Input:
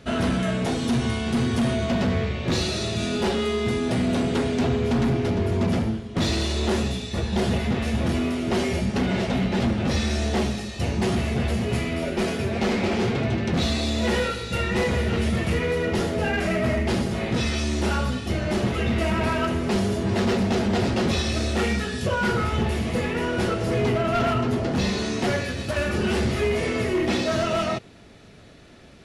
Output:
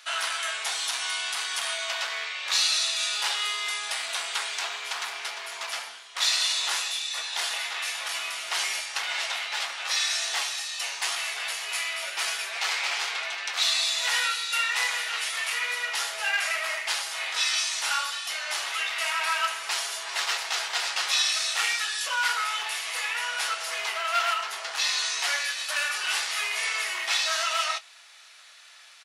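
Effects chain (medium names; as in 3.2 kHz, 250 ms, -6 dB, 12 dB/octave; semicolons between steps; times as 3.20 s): high-pass 960 Hz 24 dB/octave; treble shelf 2.9 kHz +9.5 dB; doubling 23 ms -14 dB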